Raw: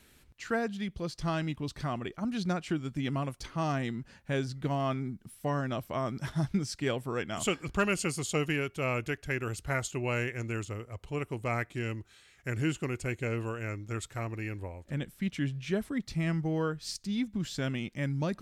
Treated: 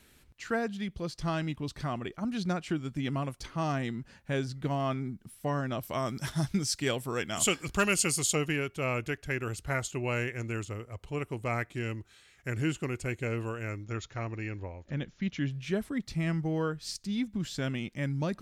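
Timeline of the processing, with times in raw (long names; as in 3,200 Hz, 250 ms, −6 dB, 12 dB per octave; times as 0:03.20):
0:05.83–0:08.35: high-shelf EQ 3,500 Hz +11 dB
0:13.84–0:15.51: linear-phase brick-wall low-pass 7,200 Hz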